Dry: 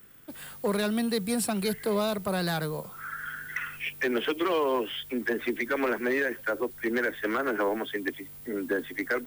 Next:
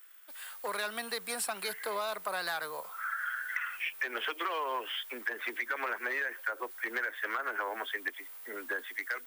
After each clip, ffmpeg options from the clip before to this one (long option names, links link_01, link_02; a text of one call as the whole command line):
ffmpeg -i in.wav -filter_complex "[0:a]acrossover=split=1800[link_01][link_02];[link_01]dynaudnorm=framelen=110:gausssize=11:maxgain=8dB[link_03];[link_03][link_02]amix=inputs=2:normalize=0,highpass=1100,acompressor=threshold=-29dB:ratio=6,volume=-1.5dB" out.wav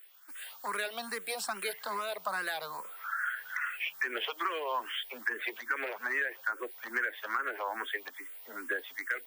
ffmpeg -i in.wav -filter_complex "[0:a]equalizer=frequency=12000:width=3.5:gain=-4,asplit=2[link_01][link_02];[link_02]afreqshift=2.4[link_03];[link_01][link_03]amix=inputs=2:normalize=1,volume=3dB" out.wav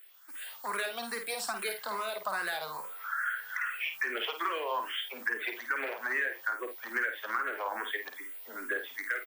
ffmpeg -i in.wav -af "aecho=1:1:51|79:0.447|0.133" out.wav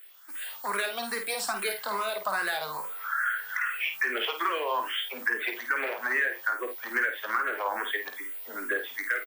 ffmpeg -i in.wav -filter_complex "[0:a]asplit=2[link_01][link_02];[link_02]adelay=20,volume=-12.5dB[link_03];[link_01][link_03]amix=inputs=2:normalize=0,volume=4dB" out.wav